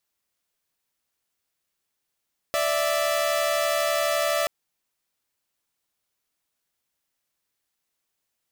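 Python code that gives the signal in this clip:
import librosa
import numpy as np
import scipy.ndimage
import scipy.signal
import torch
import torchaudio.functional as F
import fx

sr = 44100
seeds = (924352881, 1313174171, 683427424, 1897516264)

y = fx.chord(sr, length_s=1.93, notes=(74, 76), wave='saw', level_db=-22.0)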